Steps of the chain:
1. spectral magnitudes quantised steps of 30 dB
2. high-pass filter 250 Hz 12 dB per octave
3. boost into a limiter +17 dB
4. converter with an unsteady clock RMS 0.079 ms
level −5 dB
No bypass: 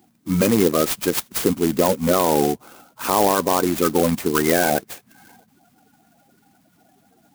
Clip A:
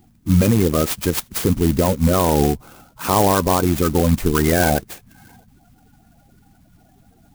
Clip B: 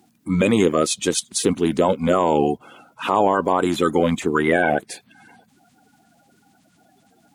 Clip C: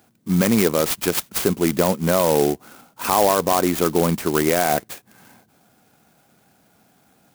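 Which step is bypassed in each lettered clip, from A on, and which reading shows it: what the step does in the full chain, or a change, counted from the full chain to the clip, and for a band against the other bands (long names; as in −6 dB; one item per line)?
2, 125 Hz band +9.5 dB
4, 2 kHz band +2.0 dB
1, 125 Hz band +2.0 dB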